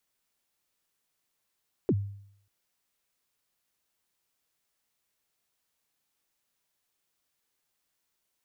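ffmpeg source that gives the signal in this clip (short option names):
-f lavfi -i "aevalsrc='0.112*pow(10,-3*t/0.67)*sin(2*PI*(460*0.051/log(100/460)*(exp(log(100/460)*min(t,0.051)/0.051)-1)+100*max(t-0.051,0)))':d=0.59:s=44100"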